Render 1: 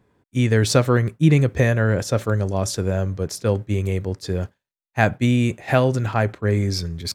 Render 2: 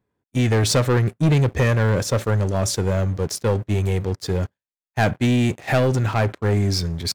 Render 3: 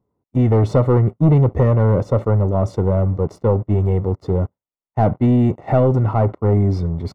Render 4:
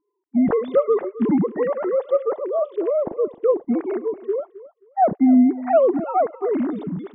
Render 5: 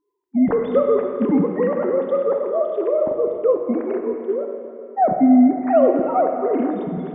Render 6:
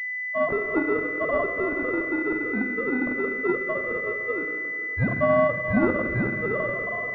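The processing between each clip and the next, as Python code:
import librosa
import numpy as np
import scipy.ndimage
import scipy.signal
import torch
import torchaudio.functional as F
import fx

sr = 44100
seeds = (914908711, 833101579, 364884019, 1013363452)

y1 = fx.leveller(x, sr, passes=3)
y1 = y1 * librosa.db_to_amplitude(-8.0)
y2 = scipy.signal.savgol_filter(y1, 65, 4, mode='constant')
y2 = y2 * librosa.db_to_amplitude(4.0)
y3 = fx.sine_speech(y2, sr)
y3 = fx.echo_feedback(y3, sr, ms=265, feedback_pct=19, wet_db=-17)
y3 = y3 * librosa.db_to_amplitude(-4.0)
y4 = fx.rev_plate(y3, sr, seeds[0], rt60_s=2.6, hf_ratio=0.8, predelay_ms=0, drr_db=3.5)
y5 = y4 * np.sin(2.0 * np.pi * 870.0 * np.arange(len(y4)) / sr)
y5 = fx.pwm(y5, sr, carrier_hz=2000.0)
y5 = y5 * librosa.db_to_amplitude(-2.0)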